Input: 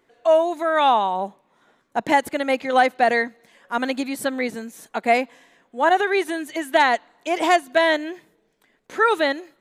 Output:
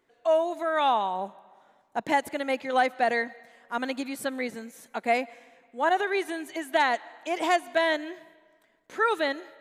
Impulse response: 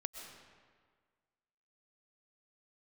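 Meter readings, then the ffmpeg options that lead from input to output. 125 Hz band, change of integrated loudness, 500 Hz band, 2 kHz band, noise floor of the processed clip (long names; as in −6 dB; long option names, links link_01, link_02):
can't be measured, −6.5 dB, −6.5 dB, −6.5 dB, −66 dBFS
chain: -filter_complex "[0:a]asplit=2[link_01][link_02];[1:a]atrim=start_sample=2205,lowshelf=frequency=300:gain=-11.5[link_03];[link_02][link_03]afir=irnorm=-1:irlink=0,volume=-13dB[link_04];[link_01][link_04]amix=inputs=2:normalize=0,volume=-7.5dB"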